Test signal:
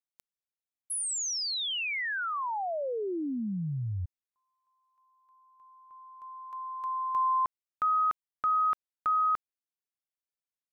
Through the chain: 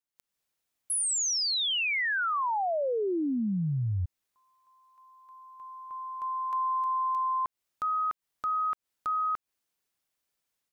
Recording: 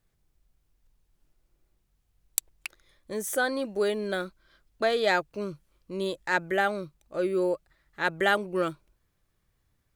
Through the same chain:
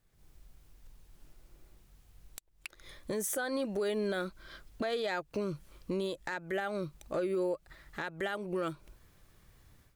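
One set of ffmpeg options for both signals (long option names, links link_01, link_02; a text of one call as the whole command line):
ffmpeg -i in.wav -af "acompressor=threshold=-33dB:ratio=16:attack=0.13:release=466:knee=1:detection=peak,alimiter=level_in=13.5dB:limit=-24dB:level=0:latency=1:release=206,volume=-13.5dB,dynaudnorm=framelen=120:gausssize=3:maxgain=12dB" out.wav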